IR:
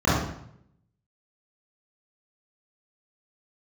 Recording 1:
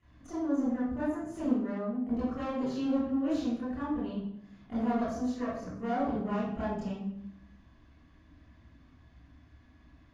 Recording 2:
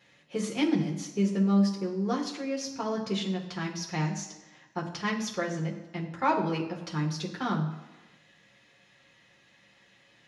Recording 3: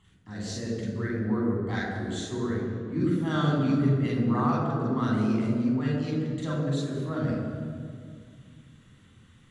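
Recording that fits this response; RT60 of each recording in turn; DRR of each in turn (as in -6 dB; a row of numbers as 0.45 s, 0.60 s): 1; 0.70 s, 1.2 s, 2.1 s; -12.0 dB, -3.0 dB, -4.0 dB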